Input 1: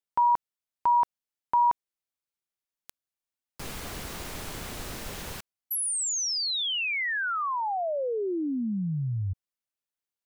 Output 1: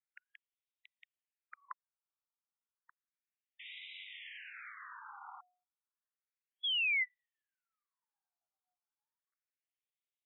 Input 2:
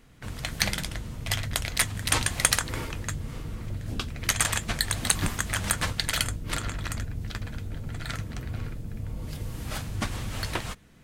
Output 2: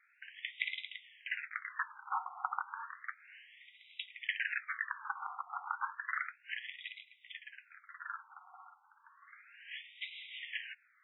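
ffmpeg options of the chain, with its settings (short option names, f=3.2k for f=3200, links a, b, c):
-filter_complex "[0:a]bandreject=f=80.56:t=h:w=4,bandreject=f=161.12:t=h:w=4,bandreject=f=241.68:t=h:w=4,bandreject=f=322.24:t=h:w=4,bandreject=f=402.8:t=h:w=4,bandreject=f=483.36:t=h:w=4,bandreject=f=563.92:t=h:w=4,bandreject=f=644.48:t=h:w=4,bandreject=f=725.04:t=h:w=4,acrossover=split=2600[a][b];[b]acompressor=threshold=-34dB:ratio=4:attack=1:release=60[c];[a][c]amix=inputs=2:normalize=0,afftfilt=real='re*between(b*sr/1024,1000*pow(2800/1000,0.5+0.5*sin(2*PI*0.32*pts/sr))/1.41,1000*pow(2800/1000,0.5+0.5*sin(2*PI*0.32*pts/sr))*1.41)':imag='im*between(b*sr/1024,1000*pow(2800/1000,0.5+0.5*sin(2*PI*0.32*pts/sr))/1.41,1000*pow(2800/1000,0.5+0.5*sin(2*PI*0.32*pts/sr))*1.41)':win_size=1024:overlap=0.75,volume=-2dB"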